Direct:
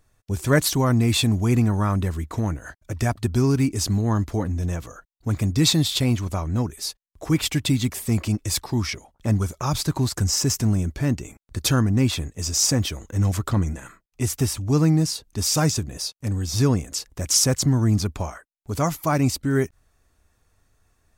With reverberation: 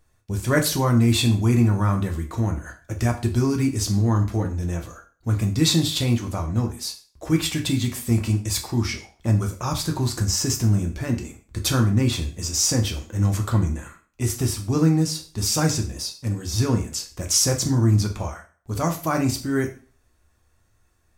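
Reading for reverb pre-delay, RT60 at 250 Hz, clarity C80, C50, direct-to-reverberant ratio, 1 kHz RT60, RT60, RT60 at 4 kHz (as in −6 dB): 4 ms, 0.45 s, 15.5 dB, 11.5 dB, 3.0 dB, 0.40 s, 0.40 s, 0.40 s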